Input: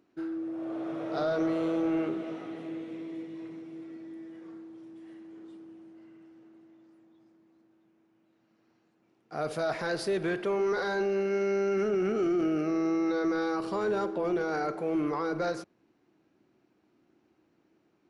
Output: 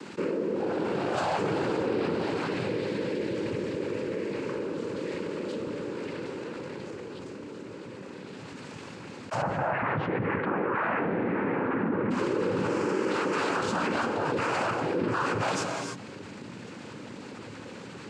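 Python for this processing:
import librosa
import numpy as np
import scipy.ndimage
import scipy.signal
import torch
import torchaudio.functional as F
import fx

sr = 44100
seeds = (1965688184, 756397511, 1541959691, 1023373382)

y = fx.peak_eq(x, sr, hz=440.0, db=-14.5, octaves=0.92)
y = fx.leveller(y, sr, passes=2)
y = fx.noise_vocoder(y, sr, seeds[0], bands=8)
y = fx.lowpass(y, sr, hz=1900.0, slope=24, at=(9.41, 12.1), fade=0.02)
y = fx.rev_gated(y, sr, seeds[1], gate_ms=330, shape='flat', drr_db=11.5)
y = fx.env_flatten(y, sr, amount_pct=70)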